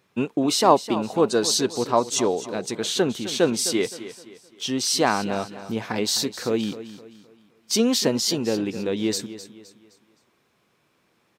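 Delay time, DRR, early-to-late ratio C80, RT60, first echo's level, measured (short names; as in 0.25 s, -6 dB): 0.259 s, none, none, none, -14.0 dB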